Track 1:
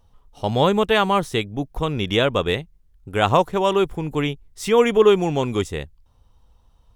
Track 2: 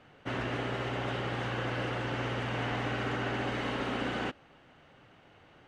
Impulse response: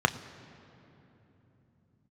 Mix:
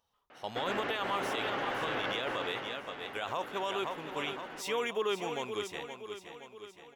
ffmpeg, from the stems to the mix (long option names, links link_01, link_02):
-filter_complex "[0:a]highpass=frequency=1100:poles=1,volume=-7.5dB,asplit=2[link_01][link_02];[link_02]volume=-10dB[link_03];[1:a]highpass=200,asplit=2[link_04][link_05];[link_05]highpass=frequency=720:poles=1,volume=16dB,asoftclip=type=tanh:threshold=-21.5dB[link_06];[link_04][link_06]amix=inputs=2:normalize=0,lowpass=frequency=1700:poles=1,volume=-6dB,adelay=300,volume=-3dB,afade=type=out:start_time=2.27:duration=0.53:silence=0.266073[link_07];[link_03]aecho=0:1:520|1040|1560|2080|2600|3120|3640|4160:1|0.53|0.281|0.149|0.0789|0.0418|0.0222|0.0117[link_08];[link_01][link_07][link_08]amix=inputs=3:normalize=0,equalizer=frequency=8700:width=2.4:gain=-5.5,alimiter=limit=-23.5dB:level=0:latency=1:release=28"